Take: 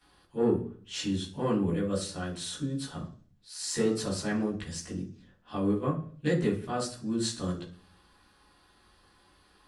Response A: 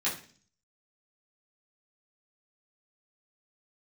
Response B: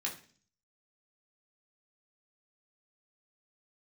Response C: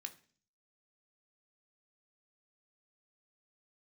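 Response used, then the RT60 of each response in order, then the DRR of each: A; 0.45, 0.45, 0.45 s; -9.5, -2.5, 6.0 dB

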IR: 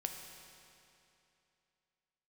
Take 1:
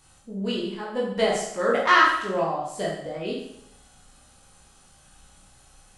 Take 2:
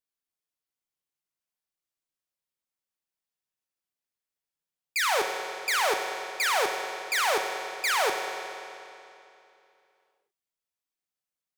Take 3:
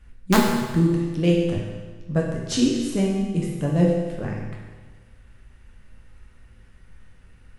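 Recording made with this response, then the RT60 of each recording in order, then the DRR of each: 2; 0.75, 2.8, 1.4 s; -5.0, 3.5, -3.0 dB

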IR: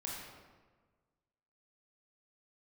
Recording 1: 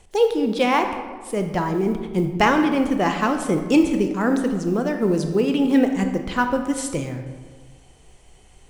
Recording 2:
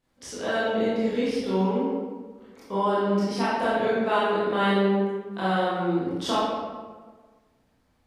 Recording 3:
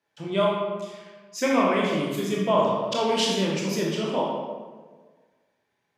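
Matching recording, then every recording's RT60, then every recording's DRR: 3; 1.4, 1.4, 1.4 s; 5.5, -10.5, -4.0 dB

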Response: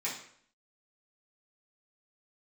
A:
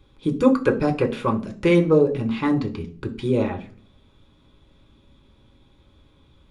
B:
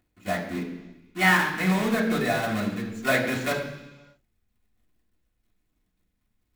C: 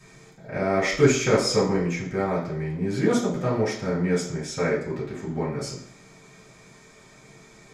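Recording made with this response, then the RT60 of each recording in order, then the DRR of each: C; 0.45 s, not exponential, 0.60 s; 3.0, -5.0, -8.5 dB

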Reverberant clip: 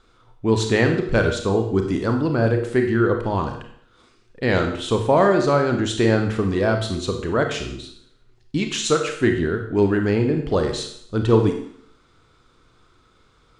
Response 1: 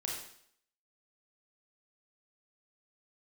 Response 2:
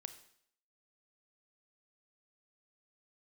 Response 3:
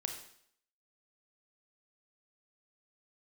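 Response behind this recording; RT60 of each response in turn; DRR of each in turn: 3; 0.65, 0.65, 0.65 s; -2.5, 10.0, 4.0 dB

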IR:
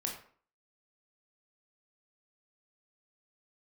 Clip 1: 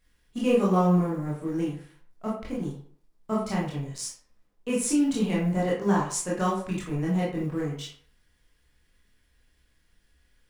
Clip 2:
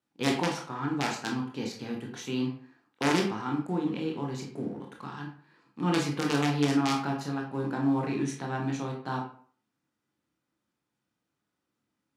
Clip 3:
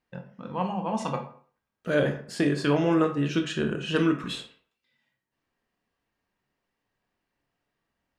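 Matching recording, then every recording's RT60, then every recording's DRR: 2; 0.50, 0.50, 0.50 s; -6.0, 0.0, 5.0 dB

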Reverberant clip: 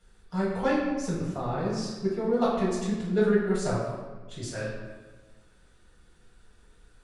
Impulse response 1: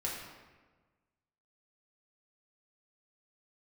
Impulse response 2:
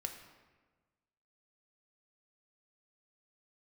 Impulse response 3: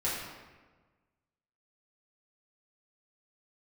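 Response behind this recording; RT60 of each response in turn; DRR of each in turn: 3; 1.4, 1.4, 1.4 s; -4.5, 4.5, -8.5 dB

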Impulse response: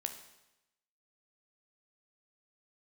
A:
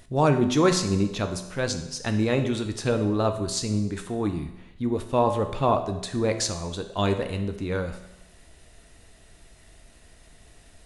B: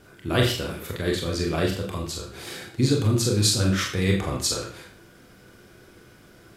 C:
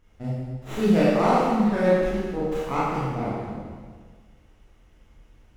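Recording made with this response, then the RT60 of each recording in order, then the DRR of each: A; 0.95, 0.50, 1.6 s; 6.0, -0.5, -9.0 dB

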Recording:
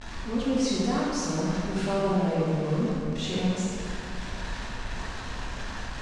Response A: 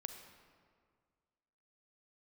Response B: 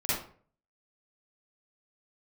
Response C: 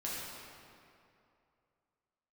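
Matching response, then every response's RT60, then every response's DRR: C; 1.9, 0.50, 2.6 s; 6.5, -12.0, -7.0 dB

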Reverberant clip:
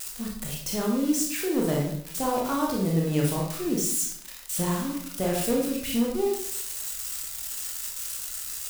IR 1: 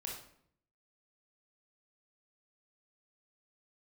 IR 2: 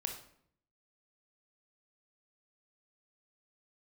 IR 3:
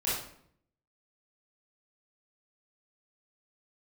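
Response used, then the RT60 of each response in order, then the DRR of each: 1; 0.65, 0.65, 0.65 s; -2.0, 3.5, -9.5 dB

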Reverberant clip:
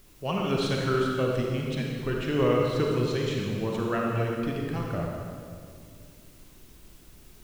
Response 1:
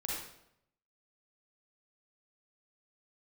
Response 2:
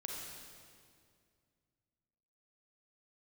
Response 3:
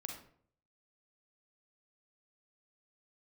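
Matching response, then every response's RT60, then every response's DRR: 2; 0.75, 2.2, 0.55 s; -4.5, -1.5, 2.0 dB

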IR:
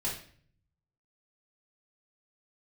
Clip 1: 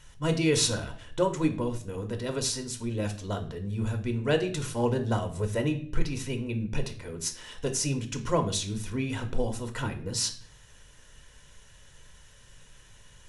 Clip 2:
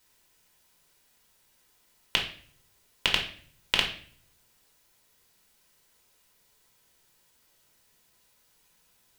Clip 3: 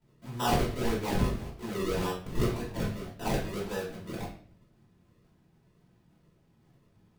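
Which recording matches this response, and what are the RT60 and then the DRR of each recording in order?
3; 0.50, 0.50, 0.50 s; 6.0, 0.0, -8.0 dB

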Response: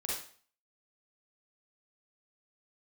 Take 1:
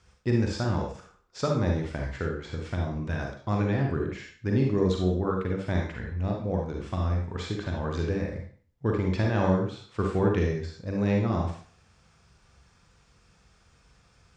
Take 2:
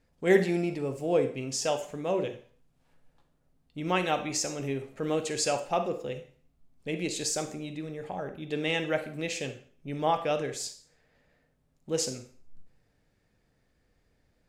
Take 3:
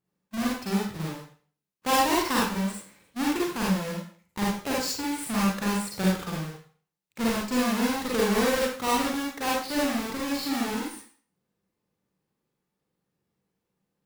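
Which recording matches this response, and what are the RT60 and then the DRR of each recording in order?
3; 0.45, 0.45, 0.45 s; 0.0, 9.0, -5.5 dB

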